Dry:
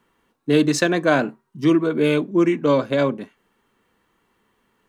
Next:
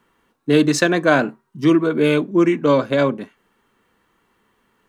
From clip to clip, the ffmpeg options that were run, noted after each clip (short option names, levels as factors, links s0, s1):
-af "equalizer=f=1400:t=o:w=0.77:g=2,volume=1.26"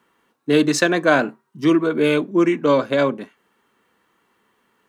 -af "highpass=f=200:p=1"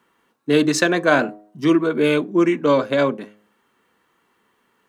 -af "bandreject=f=104.6:t=h:w=4,bandreject=f=209.2:t=h:w=4,bandreject=f=313.8:t=h:w=4,bandreject=f=418.4:t=h:w=4,bandreject=f=523:t=h:w=4,bandreject=f=627.6:t=h:w=4,bandreject=f=732.2:t=h:w=4"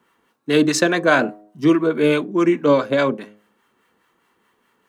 -filter_complex "[0:a]acrossover=split=800[s0][s1];[s0]aeval=exprs='val(0)*(1-0.5/2+0.5/2*cos(2*PI*4.8*n/s))':c=same[s2];[s1]aeval=exprs='val(0)*(1-0.5/2-0.5/2*cos(2*PI*4.8*n/s))':c=same[s3];[s2][s3]amix=inputs=2:normalize=0,volume=1.41"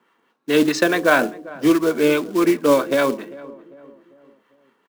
-filter_complex "[0:a]highpass=200,lowpass=4600,acrusher=bits=4:mode=log:mix=0:aa=0.000001,asplit=2[s0][s1];[s1]adelay=397,lowpass=f=1100:p=1,volume=0.126,asplit=2[s2][s3];[s3]adelay=397,lowpass=f=1100:p=1,volume=0.48,asplit=2[s4][s5];[s5]adelay=397,lowpass=f=1100:p=1,volume=0.48,asplit=2[s6][s7];[s7]adelay=397,lowpass=f=1100:p=1,volume=0.48[s8];[s0][s2][s4][s6][s8]amix=inputs=5:normalize=0"